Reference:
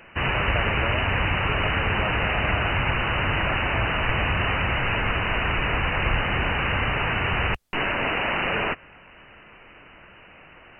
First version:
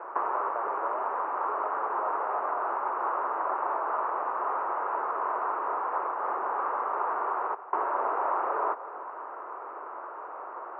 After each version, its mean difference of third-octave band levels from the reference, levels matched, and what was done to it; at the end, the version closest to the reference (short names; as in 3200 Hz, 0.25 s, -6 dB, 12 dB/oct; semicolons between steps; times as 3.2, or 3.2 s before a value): 12.5 dB: compressor 16:1, threshold -34 dBFS, peak gain reduction 17 dB; elliptic band-pass 370–1300 Hz, stop band 70 dB; bell 990 Hz +10 dB 0.73 oct; on a send: split-band echo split 650 Hz, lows 0.307 s, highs 0.176 s, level -15 dB; on the sum: gain +8 dB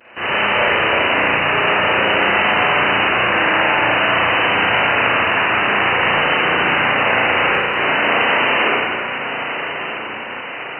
4.5 dB: vibrato 0.52 Hz 32 cents; HPF 270 Hz 12 dB/oct; on a send: diffused feedback echo 1.148 s, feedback 56%, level -9 dB; on the sum: spring tank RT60 1.8 s, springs 34/58 ms, chirp 20 ms, DRR -9 dB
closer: second